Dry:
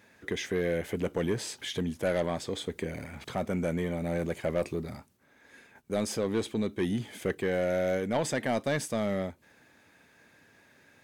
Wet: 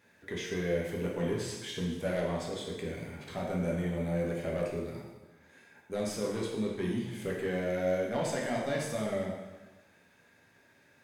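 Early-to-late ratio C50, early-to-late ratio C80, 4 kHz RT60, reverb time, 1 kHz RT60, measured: 2.0 dB, 5.0 dB, 1.1 s, 1.2 s, 1.2 s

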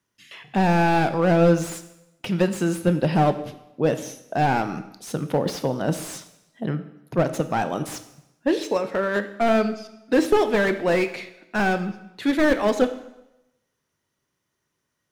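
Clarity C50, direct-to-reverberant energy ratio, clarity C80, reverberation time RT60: 12.5 dB, 9.5 dB, 14.5 dB, 0.90 s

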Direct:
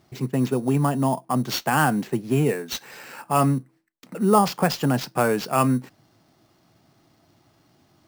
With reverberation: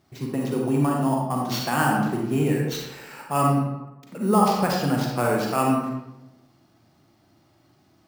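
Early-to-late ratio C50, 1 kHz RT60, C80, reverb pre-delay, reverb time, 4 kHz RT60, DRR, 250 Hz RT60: 1.0 dB, 0.90 s, 3.5 dB, 36 ms, 0.95 s, 0.55 s, −1.0 dB, 1.0 s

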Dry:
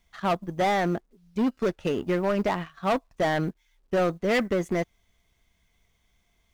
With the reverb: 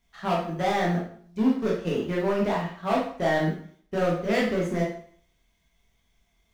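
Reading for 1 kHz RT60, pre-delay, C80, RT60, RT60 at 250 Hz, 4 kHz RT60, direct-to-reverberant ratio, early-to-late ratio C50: 0.55 s, 6 ms, 8.5 dB, 0.55 s, 0.55 s, 0.50 s, −3.5 dB, 3.5 dB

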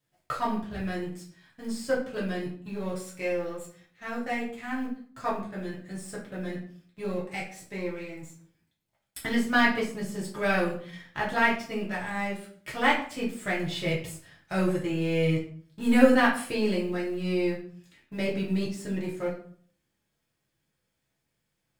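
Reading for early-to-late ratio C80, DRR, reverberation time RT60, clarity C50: 11.5 dB, −6.5 dB, 0.55 s, 6.5 dB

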